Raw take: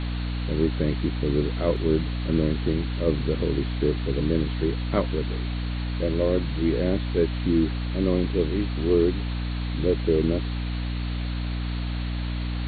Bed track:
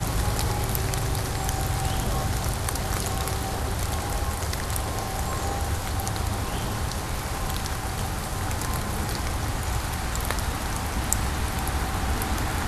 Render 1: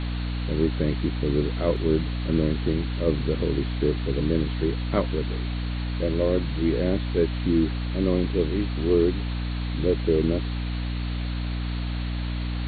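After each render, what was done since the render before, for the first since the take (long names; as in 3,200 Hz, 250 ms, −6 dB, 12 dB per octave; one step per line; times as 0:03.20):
no processing that can be heard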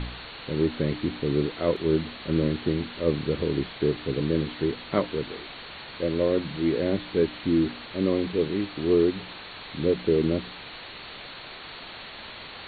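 hum removal 60 Hz, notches 5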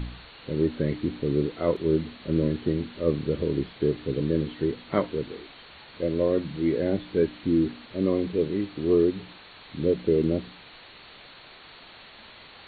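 noise reduction from a noise print 7 dB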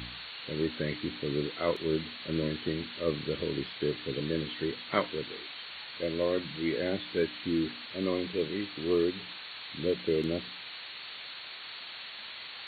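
high-pass filter 77 Hz
tilt shelving filter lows −8.5 dB, about 1,100 Hz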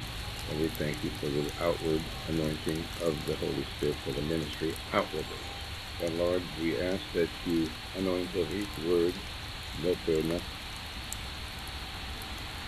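mix in bed track −15 dB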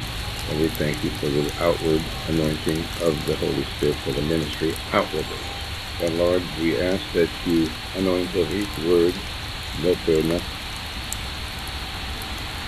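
level +9 dB
brickwall limiter −3 dBFS, peak gain reduction 2 dB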